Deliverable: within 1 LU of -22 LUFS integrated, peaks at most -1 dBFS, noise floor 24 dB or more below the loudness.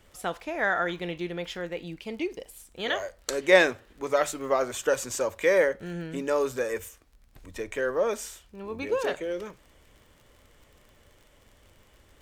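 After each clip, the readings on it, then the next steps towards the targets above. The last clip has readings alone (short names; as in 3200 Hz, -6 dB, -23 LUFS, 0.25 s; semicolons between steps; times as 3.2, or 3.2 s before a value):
ticks 40/s; loudness -28.0 LUFS; peak -4.0 dBFS; loudness target -22.0 LUFS
-> de-click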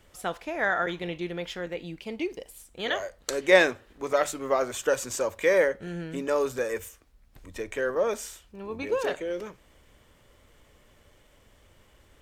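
ticks 0.33/s; loudness -28.0 LUFS; peak -4.0 dBFS; loudness target -22.0 LUFS
-> gain +6 dB; limiter -1 dBFS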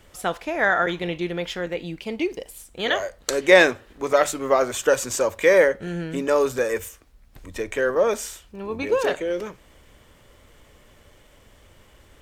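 loudness -22.5 LUFS; peak -1.0 dBFS; noise floor -54 dBFS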